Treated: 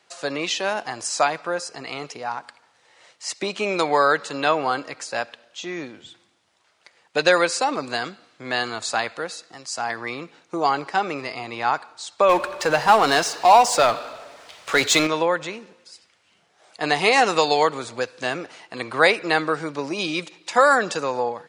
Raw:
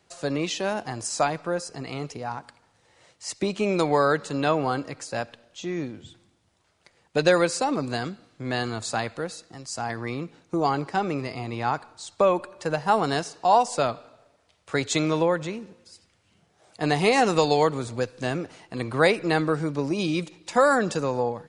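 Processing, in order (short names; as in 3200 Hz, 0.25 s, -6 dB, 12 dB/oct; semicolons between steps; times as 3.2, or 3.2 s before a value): HPF 1000 Hz 6 dB/oct; high shelf 7900 Hz -10.5 dB; 12.29–15.07 power-law curve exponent 0.7; gain +8 dB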